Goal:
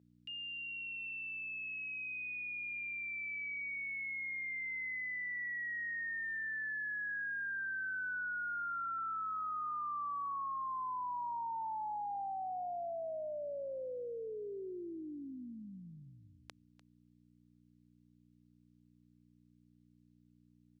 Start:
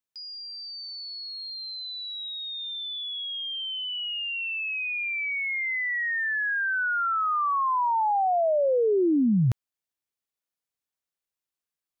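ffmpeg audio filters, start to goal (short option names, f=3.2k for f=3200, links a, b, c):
-filter_complex "[0:a]asetrate=25442,aresample=44100,aderivative,aeval=exprs='val(0)+0.000708*(sin(2*PI*60*n/s)+sin(2*PI*2*60*n/s)/2+sin(2*PI*3*60*n/s)/3+sin(2*PI*4*60*n/s)/4+sin(2*PI*5*60*n/s)/5)':c=same,highpass=160,lowpass=3.7k,asplit=2[a][b];[b]aecho=0:1:297:0.133[c];[a][c]amix=inputs=2:normalize=0,volume=5dB"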